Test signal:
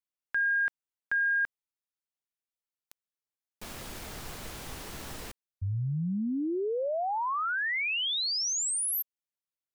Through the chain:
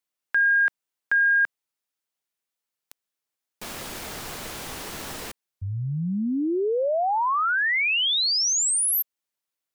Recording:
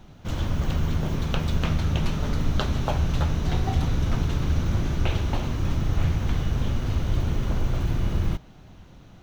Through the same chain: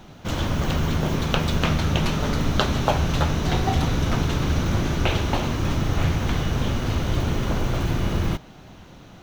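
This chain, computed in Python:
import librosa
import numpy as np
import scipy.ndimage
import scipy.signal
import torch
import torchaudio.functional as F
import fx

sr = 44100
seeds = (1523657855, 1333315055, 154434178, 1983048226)

y = fx.low_shelf(x, sr, hz=130.0, db=-10.0)
y = y * 10.0 ** (7.5 / 20.0)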